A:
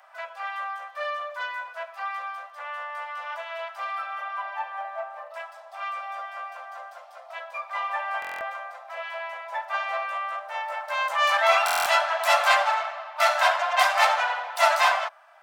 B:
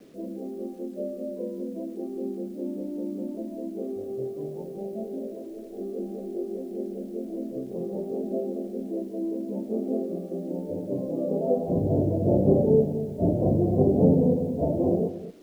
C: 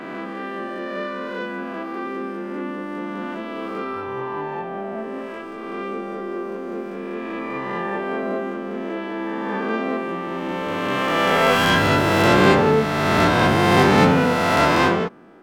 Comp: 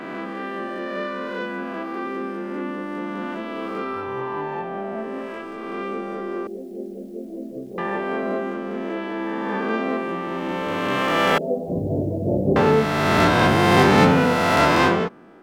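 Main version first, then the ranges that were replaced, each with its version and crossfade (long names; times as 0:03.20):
C
0:06.47–0:07.78: punch in from B
0:11.38–0:12.56: punch in from B
not used: A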